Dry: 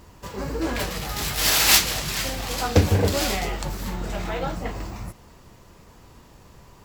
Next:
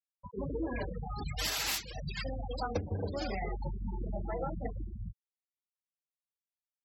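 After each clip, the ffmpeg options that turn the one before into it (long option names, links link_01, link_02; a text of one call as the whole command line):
ffmpeg -i in.wav -af "bandreject=frequency=60:width_type=h:width=6,bandreject=frequency=120:width_type=h:width=6,bandreject=frequency=180:width_type=h:width=6,afftfilt=real='re*gte(hypot(re,im),0.0891)':imag='im*gte(hypot(re,im),0.0891)':win_size=1024:overlap=0.75,acompressor=threshold=-26dB:ratio=16,volume=-4.5dB" out.wav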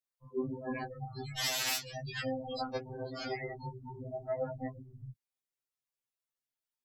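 ffmpeg -i in.wav -af "afftfilt=real='re*2.45*eq(mod(b,6),0)':imag='im*2.45*eq(mod(b,6),0)':win_size=2048:overlap=0.75,volume=3dB" out.wav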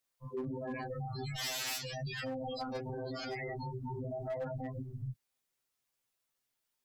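ffmpeg -i in.wav -af "volume=30dB,asoftclip=hard,volume=-30dB,alimiter=level_in=17.5dB:limit=-24dB:level=0:latency=1:release=51,volume=-17.5dB,volume=8.5dB" out.wav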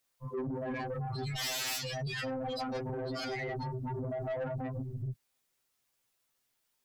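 ffmpeg -i in.wav -af "asoftclip=type=tanh:threshold=-36.5dB,volume=5.5dB" out.wav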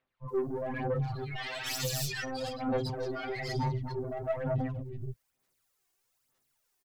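ffmpeg -i in.wav -filter_complex "[0:a]acrossover=split=3200[link_01][link_02];[link_02]adelay=280[link_03];[link_01][link_03]amix=inputs=2:normalize=0,aeval=exprs='0.0668*(cos(1*acos(clip(val(0)/0.0668,-1,1)))-cos(1*PI/2))+0.015*(cos(2*acos(clip(val(0)/0.0668,-1,1)))-cos(2*PI/2))':channel_layout=same,aphaser=in_gain=1:out_gain=1:delay=2.8:decay=0.57:speed=1.1:type=sinusoidal" out.wav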